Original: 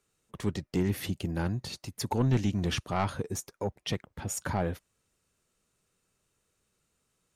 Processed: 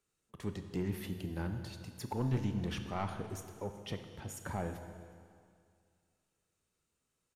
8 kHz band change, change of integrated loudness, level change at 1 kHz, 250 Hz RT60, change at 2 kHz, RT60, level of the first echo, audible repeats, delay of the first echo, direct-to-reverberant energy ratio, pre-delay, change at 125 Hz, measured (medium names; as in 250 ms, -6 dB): -12.0 dB, -7.5 dB, -7.5 dB, 2.2 s, -8.0 dB, 2.2 s, -23.0 dB, 1, 368 ms, 7.0 dB, 24 ms, -7.0 dB